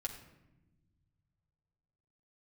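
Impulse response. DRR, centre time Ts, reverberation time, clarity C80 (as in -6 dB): -1.0 dB, 18 ms, not exponential, 11.0 dB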